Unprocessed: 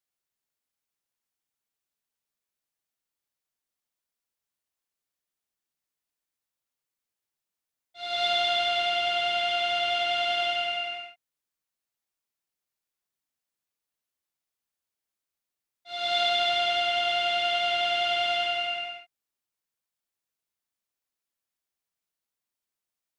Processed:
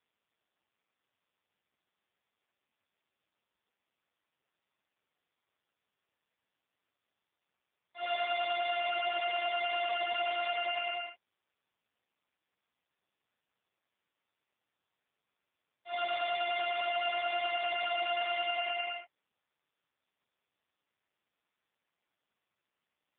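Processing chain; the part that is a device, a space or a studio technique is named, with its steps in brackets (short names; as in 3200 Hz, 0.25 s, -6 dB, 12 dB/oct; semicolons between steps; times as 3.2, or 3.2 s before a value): voicemail (BPF 320–2900 Hz; compressor 10:1, threshold -31 dBFS, peak gain reduction 8.5 dB; gain +4 dB; AMR-NB 5.15 kbps 8000 Hz)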